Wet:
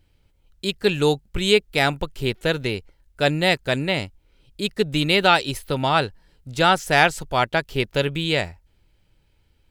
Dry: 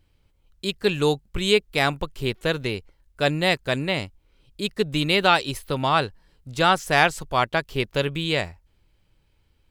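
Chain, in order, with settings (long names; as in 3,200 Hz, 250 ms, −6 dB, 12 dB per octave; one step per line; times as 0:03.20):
notch filter 1,100 Hz, Q 8.3
level +2 dB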